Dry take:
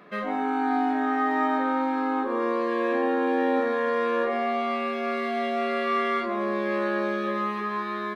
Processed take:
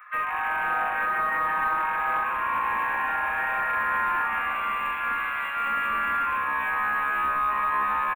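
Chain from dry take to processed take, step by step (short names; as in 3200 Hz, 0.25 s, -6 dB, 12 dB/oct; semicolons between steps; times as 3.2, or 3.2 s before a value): rattling part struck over -46 dBFS, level -27 dBFS; steep high-pass 1100 Hz 36 dB/oct; comb 6.5 ms, depth 79%; limiter -22.5 dBFS, peak gain reduction 7.5 dB; hard clip -29.5 dBFS, distortion -13 dB; Butterworth band-stop 5200 Hz, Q 0.51; frequency-shifting echo 0.178 s, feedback 45%, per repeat -140 Hz, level -9 dB; on a send at -13.5 dB: reverb RT60 0.45 s, pre-delay 3 ms; on the sum: gain +8.5 dB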